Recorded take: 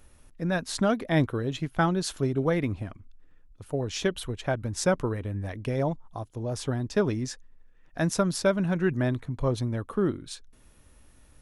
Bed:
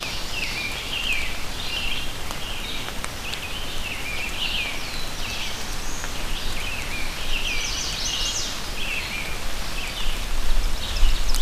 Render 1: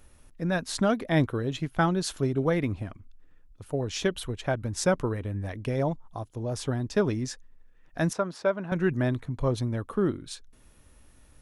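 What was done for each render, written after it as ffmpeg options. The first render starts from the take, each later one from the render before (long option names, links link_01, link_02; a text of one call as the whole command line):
ffmpeg -i in.wav -filter_complex "[0:a]asettb=1/sr,asplit=3[link_01][link_02][link_03];[link_01]atrim=end=8.134[link_04];[link_02]atrim=start=8.13:end=8.72,asetpts=PTS-STARTPTS,afade=type=in:duration=0.004:curve=qsin,afade=type=out:start_time=0.586:duration=0.004:curve=qsin,bandpass=frequency=870:width_type=q:width=0.66[link_05];[link_03]atrim=start=8.716[link_06];[link_04][link_05]acrossfade=duration=0.004:curve1=hsin:curve2=qsin[link_07];[link_07][link_06]acrossfade=duration=0.004:curve1=qsin:curve2=hsin" out.wav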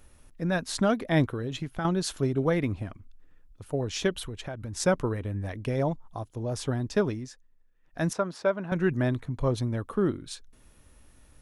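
ffmpeg -i in.wav -filter_complex "[0:a]asettb=1/sr,asplit=3[link_01][link_02][link_03];[link_01]atrim=end=1.334[link_04];[link_02]atrim=start=1.33:end=1.85,asetpts=PTS-STARTPTS,afade=type=in:duration=0.004:curve=qsin,afade=type=out:start_time=0.516:duration=0.004:curve=qsin,acompressor=threshold=-27dB:ratio=6:attack=3.2:release=140:knee=1:detection=peak[link_05];[link_03]atrim=start=1.846[link_06];[link_04][link_05]acrossfade=duration=0.004:curve1=hsin:curve2=qsin[link_07];[link_07][link_06]acrossfade=duration=0.004:curve1=qsin:curve2=hsin,asettb=1/sr,asplit=3[link_08][link_09][link_10];[link_08]atrim=end=4.234[link_11];[link_09]atrim=start=4.23:end=4.8,asetpts=PTS-STARTPTS,afade=type=in:duration=0.004:curve=qsin,afade=type=out:start_time=0.566:duration=0.004:curve=qsin,acompressor=threshold=-32dB:ratio=6:attack=3.2:release=140:knee=1:detection=peak[link_12];[link_10]atrim=start=4.796[link_13];[link_11][link_12]acrossfade=duration=0.004:curve1=hsin:curve2=qsin[link_14];[link_14][link_13]acrossfade=duration=0.004:curve1=qsin:curve2=hsin,asplit=3[link_15][link_16][link_17];[link_15]atrim=end=7.29,asetpts=PTS-STARTPTS,afade=type=out:start_time=6.97:duration=0.32:silence=0.316228[link_18];[link_16]atrim=start=7.29:end=7.8,asetpts=PTS-STARTPTS,volume=-10dB[link_19];[link_17]atrim=start=7.8,asetpts=PTS-STARTPTS,afade=type=in:duration=0.32:silence=0.316228[link_20];[link_18][link_19][link_20]concat=n=3:v=0:a=1" out.wav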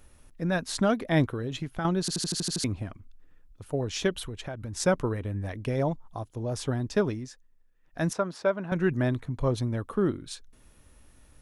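ffmpeg -i in.wav -filter_complex "[0:a]asplit=9[link_01][link_02][link_03][link_04][link_05][link_06][link_07][link_08][link_09];[link_01]atrim=end=2.082[link_10];[link_02]atrim=start=1.998:end=2.082[link_11];[link_03]atrim=start=1.998:end=2.082[link_12];[link_04]atrim=start=1.998:end=2.082[link_13];[link_05]atrim=start=1.998:end=2.082[link_14];[link_06]atrim=start=1.998:end=2.082[link_15];[link_07]atrim=start=1.998:end=2.082[link_16];[link_08]atrim=start=1.998:end=2.082[link_17];[link_09]atrim=start=2.638[link_18];[link_10][link_11]acrossfade=duration=0.004:curve1=hsin:curve2=hsin[link_19];[link_19][link_12]acrossfade=duration=0.004:curve1=hsin:curve2=hsin[link_20];[link_20][link_13]acrossfade=duration=0.004:curve1=hsin:curve2=hsin[link_21];[link_21][link_14]acrossfade=duration=0.004:curve1=hsin:curve2=hsin[link_22];[link_22][link_15]acrossfade=duration=0.004:curve1=hsin:curve2=hsin[link_23];[link_23][link_16]acrossfade=duration=0.004:curve1=hsin:curve2=hsin[link_24];[link_24][link_17]acrossfade=duration=0.004:curve1=hsin:curve2=hsin[link_25];[link_25][link_18]acrossfade=duration=0.004:curve1=hsin:curve2=hsin" out.wav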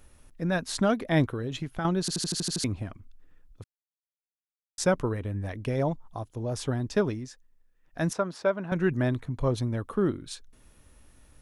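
ffmpeg -i in.wav -filter_complex "[0:a]asplit=3[link_01][link_02][link_03];[link_01]atrim=end=3.64,asetpts=PTS-STARTPTS,afade=type=out:start_time=3.636:duration=0.004:curve=hsin[link_04];[link_02]atrim=start=3.64:end=4.78,asetpts=PTS-STARTPTS,volume=0[link_05];[link_03]atrim=start=4.78,asetpts=PTS-STARTPTS,afade=type=in:duration=0.004:curve=hsin[link_06];[link_04][link_05][link_06]concat=n=3:v=0:a=1" out.wav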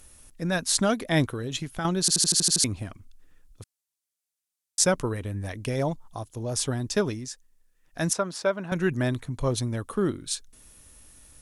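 ffmpeg -i in.wav -af "equalizer=frequency=9300:width_type=o:width=2.3:gain=13" out.wav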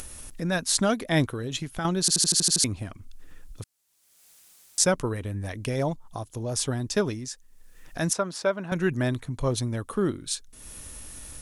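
ffmpeg -i in.wav -af "acompressor=mode=upward:threshold=-30dB:ratio=2.5" out.wav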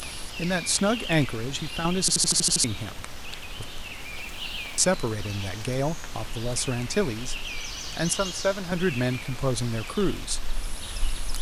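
ffmpeg -i in.wav -i bed.wav -filter_complex "[1:a]volume=-8.5dB[link_01];[0:a][link_01]amix=inputs=2:normalize=0" out.wav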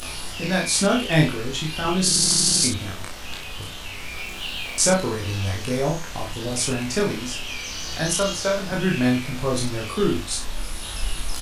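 ffmpeg -i in.wav -filter_complex "[0:a]asplit=2[link_01][link_02];[link_02]adelay=32,volume=-2dB[link_03];[link_01][link_03]amix=inputs=2:normalize=0,aecho=1:1:20|64:0.631|0.355" out.wav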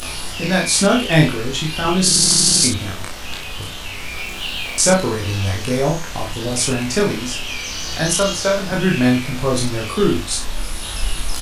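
ffmpeg -i in.wav -af "volume=5dB,alimiter=limit=-1dB:level=0:latency=1" out.wav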